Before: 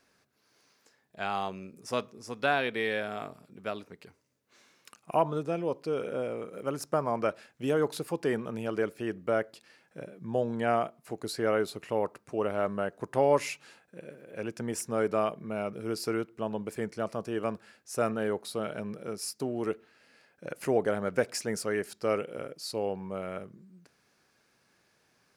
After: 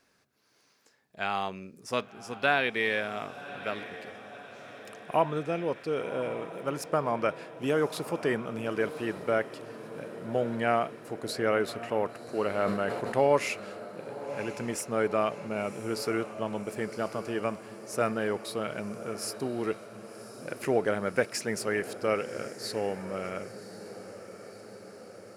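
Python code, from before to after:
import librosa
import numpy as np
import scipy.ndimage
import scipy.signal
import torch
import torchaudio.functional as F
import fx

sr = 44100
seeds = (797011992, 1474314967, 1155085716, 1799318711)

y = fx.echo_diffused(x, sr, ms=1093, feedback_pct=66, wet_db=-13.5)
y = fx.dynamic_eq(y, sr, hz=2200.0, q=1.0, threshold_db=-48.0, ratio=4.0, max_db=5)
y = fx.sustainer(y, sr, db_per_s=44.0, at=(12.52, 13.27))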